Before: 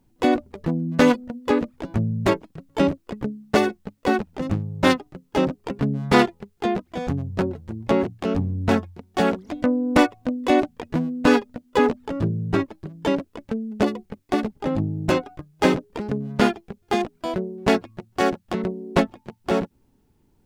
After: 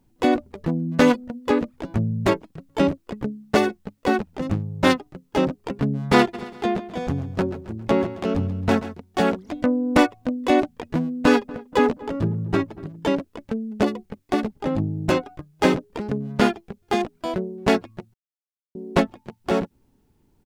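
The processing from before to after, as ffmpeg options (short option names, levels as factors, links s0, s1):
-filter_complex "[0:a]asplit=3[s0][s1][s2];[s0]afade=t=out:st=6.33:d=0.02[s3];[s1]aecho=1:1:135|270|405|540:0.2|0.0878|0.0386|0.017,afade=t=in:st=6.33:d=0.02,afade=t=out:st=8.93:d=0.02[s4];[s2]afade=t=in:st=8.93:d=0.02[s5];[s3][s4][s5]amix=inputs=3:normalize=0,asettb=1/sr,asplit=3[s6][s7][s8];[s6]atrim=end=11.054[s9];[s7]atrim=start=11.05:end=13,asetpts=PTS-STARTPTS,afade=t=in:d=0.004:c=qsin,afade=t=out:st=1.946:d=0.004:c=qsin,asplit=2[s10][s11];[s11]adelay=238,lowpass=f=1000:p=1,volume=0.126,asplit=2[s12][s13];[s13]adelay=238,lowpass=f=1000:p=1,volume=0.52,asplit=2[s14][s15];[s15]adelay=238,lowpass=f=1000:p=1,volume=0.52,asplit=2[s16][s17];[s17]adelay=238,lowpass=f=1000:p=1,volume=0.52[s18];[s10][s12][s14][s16][s18]amix=inputs=5:normalize=0,atrim=end_sample=85995[s19];[s8]atrim=start=12.996[s20];[s9][s19]acrossfade=d=0.004:c1=hsin:c2=qsin[s21];[s21][s20]acrossfade=d=0.004:c1=qsin:c2=hsin,asplit=3[s22][s23][s24];[s22]atrim=end=18.14,asetpts=PTS-STARTPTS,afade=t=out:st=18.136:d=0.004:c=hsin[s25];[s23]atrim=start=18.14:end=18.75,asetpts=PTS-STARTPTS,volume=0[s26];[s24]atrim=start=18.75,asetpts=PTS-STARTPTS,afade=t=in:d=0.004:c=hsin[s27];[s25][s26][s27]concat=n=3:v=0:a=1"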